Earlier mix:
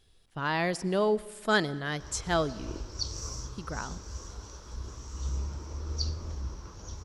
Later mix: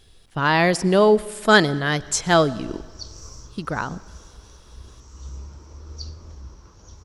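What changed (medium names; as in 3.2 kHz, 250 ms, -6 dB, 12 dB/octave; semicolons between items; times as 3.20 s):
speech +11.0 dB; background -3.5 dB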